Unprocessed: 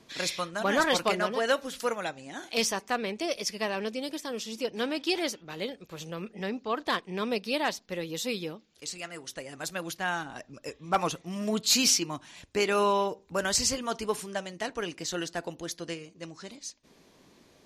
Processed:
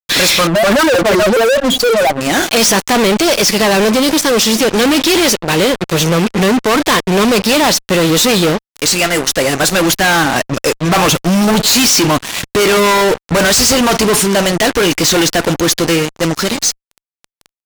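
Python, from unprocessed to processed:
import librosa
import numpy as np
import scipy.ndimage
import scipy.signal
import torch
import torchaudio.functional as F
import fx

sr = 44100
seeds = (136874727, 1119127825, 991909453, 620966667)

y = fx.spec_expand(x, sr, power=3.3, at=(0.47, 2.21))
y = fx.fuzz(y, sr, gain_db=48.0, gate_db=-48.0)
y = y * 10.0 ** (4.0 / 20.0)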